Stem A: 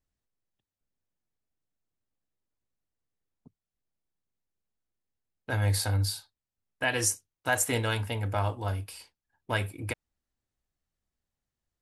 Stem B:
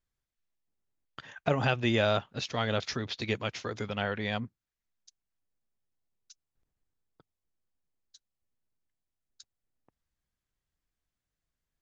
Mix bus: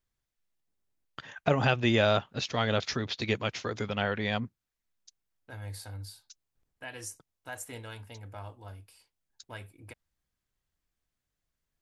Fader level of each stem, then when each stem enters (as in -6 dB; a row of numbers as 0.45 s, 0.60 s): -14.5 dB, +2.0 dB; 0.00 s, 0.00 s